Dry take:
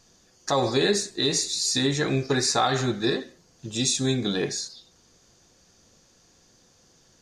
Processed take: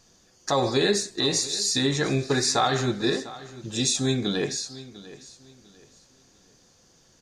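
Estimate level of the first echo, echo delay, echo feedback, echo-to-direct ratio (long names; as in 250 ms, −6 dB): −17.5 dB, 698 ms, 28%, −17.0 dB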